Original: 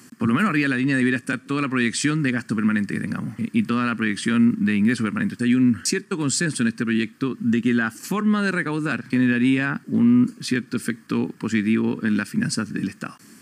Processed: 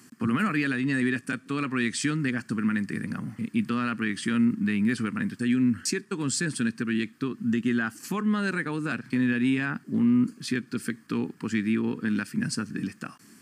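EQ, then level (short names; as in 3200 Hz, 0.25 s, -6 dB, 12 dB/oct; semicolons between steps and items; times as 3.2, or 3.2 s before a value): notch 540 Hz, Q 12; -5.5 dB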